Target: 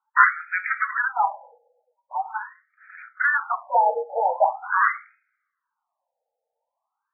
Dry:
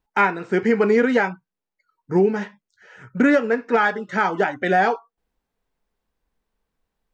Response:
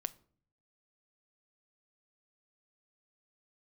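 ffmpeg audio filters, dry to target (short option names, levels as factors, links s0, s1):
-filter_complex "[0:a]acrusher=samples=11:mix=1:aa=0.000001:lfo=1:lforange=11:lforate=1.5,afreqshift=23[s0];[1:a]atrim=start_sample=2205,asetrate=33075,aresample=44100[s1];[s0][s1]afir=irnorm=-1:irlink=0,afftfilt=real='re*between(b*sr/1024,610*pow(1800/610,0.5+0.5*sin(2*PI*0.43*pts/sr))/1.41,610*pow(1800/610,0.5+0.5*sin(2*PI*0.43*pts/sr))*1.41)':imag='im*between(b*sr/1024,610*pow(1800/610,0.5+0.5*sin(2*PI*0.43*pts/sr))/1.41,610*pow(1800/610,0.5+0.5*sin(2*PI*0.43*pts/sr))*1.41)':win_size=1024:overlap=0.75,volume=1.88"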